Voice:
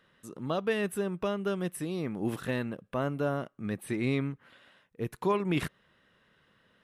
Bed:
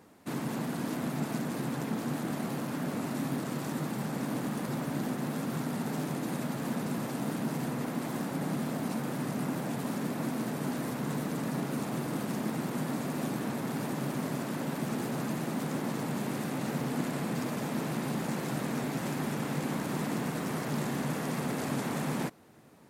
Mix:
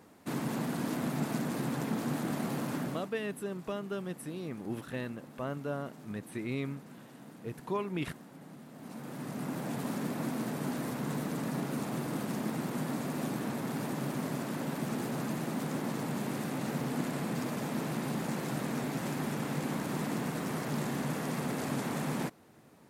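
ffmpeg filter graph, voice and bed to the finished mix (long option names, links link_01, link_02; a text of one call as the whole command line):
ffmpeg -i stem1.wav -i stem2.wav -filter_complex "[0:a]adelay=2450,volume=-6dB[link_01];[1:a]volume=16dB,afade=type=out:start_time=2.76:duration=0.34:silence=0.133352,afade=type=in:start_time=8.72:duration=1.07:silence=0.158489[link_02];[link_01][link_02]amix=inputs=2:normalize=0" out.wav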